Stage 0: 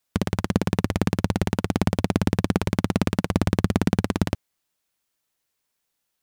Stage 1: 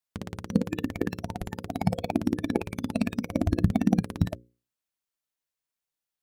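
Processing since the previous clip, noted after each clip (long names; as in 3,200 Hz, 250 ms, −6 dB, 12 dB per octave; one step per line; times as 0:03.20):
mains-hum notches 60/120/180/240/300/360/420/480/540 Hz
noise reduction from a noise print of the clip's start 14 dB
level +2 dB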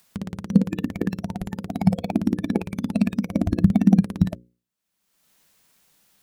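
parametric band 190 Hz +10.5 dB 0.55 octaves
upward compression, threshold −40 dBFS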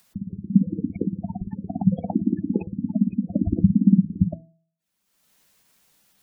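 hum removal 163.6 Hz, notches 10
gate on every frequency bin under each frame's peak −15 dB strong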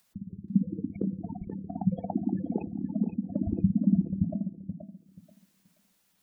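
dynamic equaliser 850 Hz, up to +5 dB, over −36 dBFS, Q 0.7
on a send: tape delay 480 ms, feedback 24%, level −7 dB, low-pass 1,700 Hz
on the sum: level −8 dB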